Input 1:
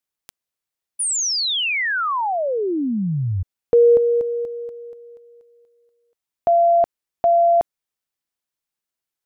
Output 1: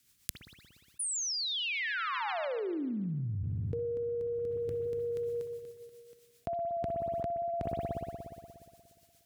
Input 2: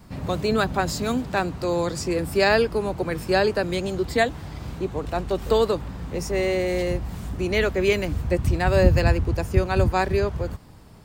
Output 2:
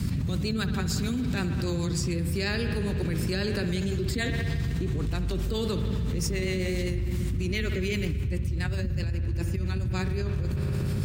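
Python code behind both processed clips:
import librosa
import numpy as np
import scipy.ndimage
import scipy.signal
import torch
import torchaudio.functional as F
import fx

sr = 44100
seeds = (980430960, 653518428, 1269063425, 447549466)

y = fx.tone_stack(x, sr, knobs='6-0-2')
y = fx.rotary(y, sr, hz=7.5)
y = scipy.signal.sosfilt(scipy.signal.butter(2, 73.0, 'highpass', fs=sr, output='sos'), y)
y = fx.low_shelf(y, sr, hz=280.0, db=4.5)
y = fx.rev_spring(y, sr, rt60_s=2.1, pass_ms=(59,), chirp_ms=20, drr_db=8.0)
y = fx.env_flatten(y, sr, amount_pct=100)
y = F.gain(torch.from_numpy(y), -3.0).numpy()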